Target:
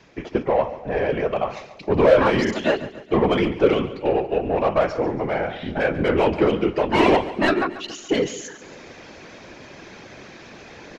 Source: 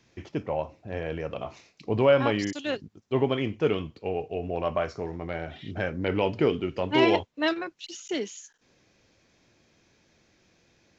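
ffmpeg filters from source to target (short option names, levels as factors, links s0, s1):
-filter_complex "[0:a]asplit=2[s0][s1];[s1]highpass=f=720:p=1,volume=11.2,asoftclip=type=tanh:threshold=0.376[s2];[s0][s2]amix=inputs=2:normalize=0,lowpass=f=1400:p=1,volume=0.501,lowshelf=f=340:g=4.5,areverse,acompressor=mode=upward:threshold=0.0316:ratio=2.5,areverse,afftfilt=real='hypot(re,im)*cos(2*PI*random(0))':imag='hypot(re,im)*sin(2*PI*random(1))':win_size=512:overlap=0.75,aecho=1:1:140|280|420|560|700:0.178|0.0871|0.0427|0.0209|0.0103,volume=2.11"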